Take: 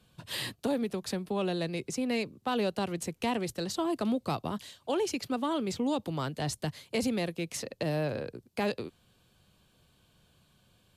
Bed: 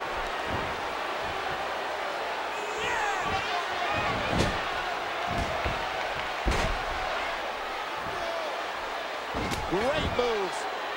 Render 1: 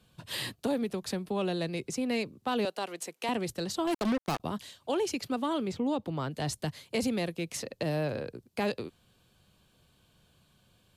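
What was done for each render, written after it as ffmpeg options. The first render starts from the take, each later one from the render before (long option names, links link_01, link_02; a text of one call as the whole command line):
ffmpeg -i in.wav -filter_complex "[0:a]asettb=1/sr,asplit=3[link_01][link_02][link_03];[link_01]atrim=end=2.654[link_04];[link_02]atrim=start=2.65:end=3.29,asetpts=PTS-STARTPTS,afade=type=in:duration=0.004:curve=qsin,afade=type=out:start_time=0.636:duration=0.004:curve=qsin,highpass=460[link_05];[link_03]atrim=start=3.286[link_06];[link_04][link_05]acrossfade=duration=0.004:curve1=hsin:curve2=qsin[link_07];[link_07][link_06]acrossfade=duration=0.004:curve1=qsin:curve2=hsin,asettb=1/sr,asplit=3[link_08][link_09][link_10];[link_08]atrim=end=3.874[link_11];[link_09]atrim=start=3.87:end=4.4,asetpts=PTS-STARTPTS,afade=type=in:duration=0.004:curve=qsin,afade=type=out:start_time=0.526:duration=0.004:curve=qsin,acrusher=bits=4:mix=0:aa=0.5[link_12];[link_10]atrim=start=4.396[link_13];[link_11][link_12]acrossfade=duration=0.004:curve1=hsin:curve2=qsin[link_14];[link_14][link_13]acrossfade=duration=0.004:curve1=qsin:curve2=hsin,asettb=1/sr,asplit=3[link_15][link_16][link_17];[link_15]atrim=end=5.674[link_18];[link_16]atrim=start=5.67:end=6.31,asetpts=PTS-STARTPTS,afade=type=in:duration=0.004:curve=qsin,afade=type=out:start_time=0.636:duration=0.004:curve=qsin,highshelf=frequency=3800:gain=-10.5[link_19];[link_17]atrim=start=6.306[link_20];[link_18][link_19]acrossfade=duration=0.004:curve1=hsin:curve2=qsin[link_21];[link_21][link_20]acrossfade=duration=0.004:curve1=qsin:curve2=hsin" out.wav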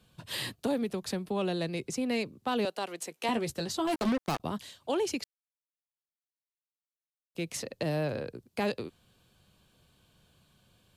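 ffmpeg -i in.wav -filter_complex "[0:a]asettb=1/sr,asplit=3[link_01][link_02][link_03];[link_01]atrim=end=3.104[link_04];[link_02]atrim=start=3.1:end=4.09,asetpts=PTS-STARTPTS,afade=type=in:duration=0.004:curve=qsin,afade=type=out:start_time=0.986:duration=0.004:curve=qsin,asplit=2[link_05][link_06];[link_06]adelay=13,volume=-7dB[link_07];[link_05][link_07]amix=inputs=2:normalize=0,atrim=end_sample=43659[link_08];[link_03]atrim=start=4.086[link_09];[link_04][link_08]acrossfade=duration=0.004:curve1=hsin:curve2=qsin[link_10];[link_10][link_09]acrossfade=duration=0.004:curve1=qsin:curve2=hsin,asplit=3[link_11][link_12][link_13];[link_11]atrim=end=5.24,asetpts=PTS-STARTPTS,afade=type=out:start_time=5.236:duration=0.004:curve=hsin[link_14];[link_12]atrim=start=5.24:end=7.35,asetpts=PTS-STARTPTS,volume=0[link_15];[link_13]atrim=start=7.35,asetpts=PTS-STARTPTS,afade=type=in:duration=0.004:curve=hsin[link_16];[link_14][link_15][link_16]concat=n=3:v=0:a=1" out.wav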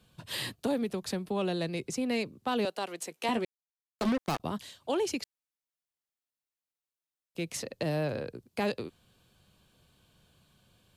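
ffmpeg -i in.wav -filter_complex "[0:a]asplit=3[link_01][link_02][link_03];[link_01]atrim=end=3.45,asetpts=PTS-STARTPTS,afade=type=out:start_time=3.446:duration=0.004:curve=hsin[link_04];[link_02]atrim=start=3.45:end=3.99,asetpts=PTS-STARTPTS,volume=0[link_05];[link_03]atrim=start=3.99,asetpts=PTS-STARTPTS,afade=type=in:duration=0.004:curve=hsin[link_06];[link_04][link_05][link_06]concat=n=3:v=0:a=1" out.wav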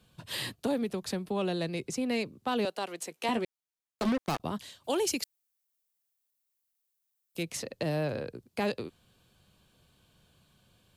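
ffmpeg -i in.wav -filter_complex "[0:a]asettb=1/sr,asplit=3[link_01][link_02][link_03];[link_01]atrim=end=4.844[link_04];[link_02]atrim=start=4.84:end=7.43,asetpts=PTS-STARTPTS,afade=type=in:duration=0.004:curve=qsin,afade=type=out:start_time=2.586:duration=0.004:curve=qsin,aemphasis=mode=production:type=50kf[link_05];[link_03]atrim=start=7.426[link_06];[link_04][link_05]acrossfade=duration=0.004:curve1=hsin:curve2=qsin[link_07];[link_07][link_06]acrossfade=duration=0.004:curve1=qsin:curve2=hsin" out.wav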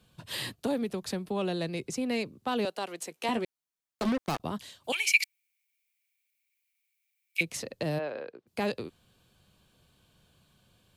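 ffmpeg -i in.wav -filter_complex "[0:a]asettb=1/sr,asplit=3[link_01][link_02][link_03];[link_01]atrim=end=4.924[link_04];[link_02]atrim=start=4.92:end=7.41,asetpts=PTS-STARTPTS,afade=type=in:duration=0.004:curve=qsin,afade=type=out:start_time=2.486:duration=0.004:curve=qsin,highpass=frequency=2300:width_type=q:width=16[link_05];[link_03]atrim=start=7.406[link_06];[link_04][link_05]acrossfade=duration=0.004:curve1=hsin:curve2=qsin[link_07];[link_07][link_06]acrossfade=duration=0.004:curve1=qsin:curve2=hsin,asplit=3[link_08][link_09][link_10];[link_08]afade=type=out:start_time=7.98:duration=0.02[link_11];[link_09]highpass=430,lowpass=2900,afade=type=in:start_time=7.98:duration=0.02,afade=type=out:start_time=8.46:duration=0.02[link_12];[link_10]afade=type=in:start_time=8.46:duration=0.02[link_13];[link_11][link_12][link_13]amix=inputs=3:normalize=0" out.wav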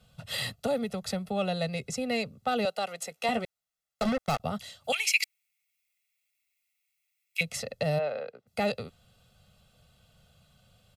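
ffmpeg -i in.wav -af "highshelf=frequency=11000:gain=-4,aecho=1:1:1.5:0.94" out.wav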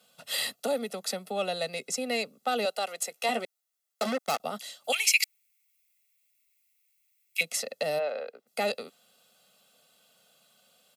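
ffmpeg -i in.wav -af "highpass=frequency=250:width=0.5412,highpass=frequency=250:width=1.3066,highshelf=frequency=6100:gain=9.5" out.wav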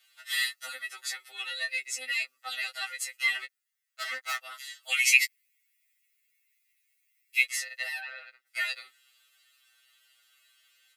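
ffmpeg -i in.wav -af "highpass=frequency=1800:width_type=q:width=3.9,afftfilt=real='re*2.45*eq(mod(b,6),0)':imag='im*2.45*eq(mod(b,6),0)':win_size=2048:overlap=0.75" out.wav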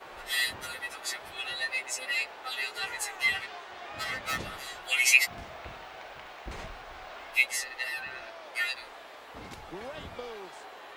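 ffmpeg -i in.wav -i bed.wav -filter_complex "[1:a]volume=-14dB[link_01];[0:a][link_01]amix=inputs=2:normalize=0" out.wav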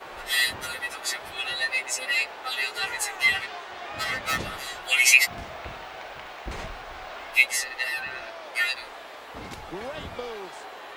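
ffmpeg -i in.wav -af "volume=5.5dB,alimiter=limit=-3dB:level=0:latency=1" out.wav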